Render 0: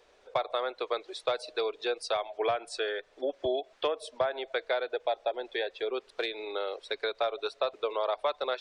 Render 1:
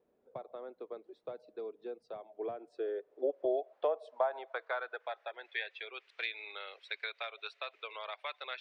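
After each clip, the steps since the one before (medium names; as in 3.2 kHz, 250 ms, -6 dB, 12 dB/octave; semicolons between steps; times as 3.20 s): band-pass sweep 210 Hz -> 2.3 kHz, 2.21–5.69 s; trim +2 dB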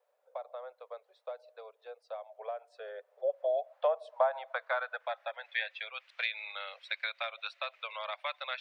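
elliptic high-pass 540 Hz, stop band 40 dB; trim +4.5 dB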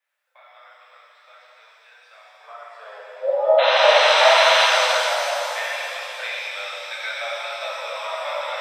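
painted sound noise, 3.58–4.66 s, 730–4200 Hz -26 dBFS; high-pass sweep 1.9 kHz -> 520 Hz, 2.21–3.24 s; pitch-shifted reverb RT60 2.9 s, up +7 st, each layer -8 dB, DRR -8 dB; trim -1 dB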